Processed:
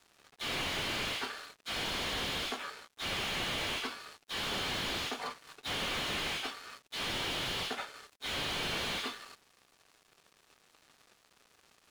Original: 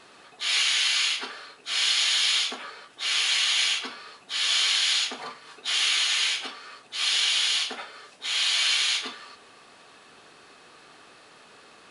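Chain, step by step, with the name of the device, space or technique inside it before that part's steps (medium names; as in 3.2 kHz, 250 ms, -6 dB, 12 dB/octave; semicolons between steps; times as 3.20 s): early transistor amplifier (crossover distortion -48 dBFS; slew-rate limiter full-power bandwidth 52 Hz)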